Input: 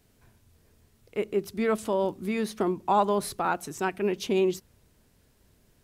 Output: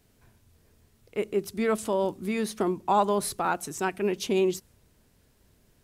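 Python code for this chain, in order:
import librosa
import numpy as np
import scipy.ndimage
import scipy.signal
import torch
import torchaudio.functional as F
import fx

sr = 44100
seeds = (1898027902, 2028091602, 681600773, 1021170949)

y = fx.dynamic_eq(x, sr, hz=8900.0, q=0.77, threshold_db=-55.0, ratio=4.0, max_db=5)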